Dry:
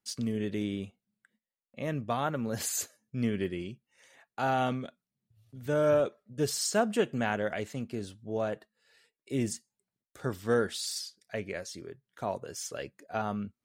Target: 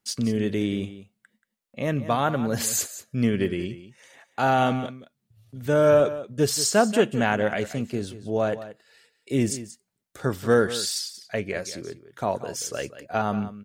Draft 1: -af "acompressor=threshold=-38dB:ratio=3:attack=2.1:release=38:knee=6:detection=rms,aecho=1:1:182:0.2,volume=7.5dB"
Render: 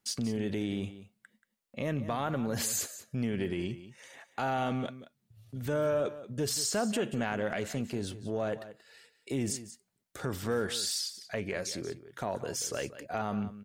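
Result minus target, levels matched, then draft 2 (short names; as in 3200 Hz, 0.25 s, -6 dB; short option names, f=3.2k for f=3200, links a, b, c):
compressor: peak gain reduction +13.5 dB
-af "aecho=1:1:182:0.2,volume=7.5dB"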